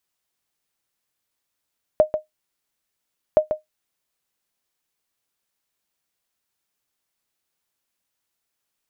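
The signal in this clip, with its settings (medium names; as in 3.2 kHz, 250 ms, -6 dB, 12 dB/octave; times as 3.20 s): sonar ping 617 Hz, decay 0.14 s, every 1.37 s, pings 2, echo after 0.14 s, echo -8.5 dB -5.5 dBFS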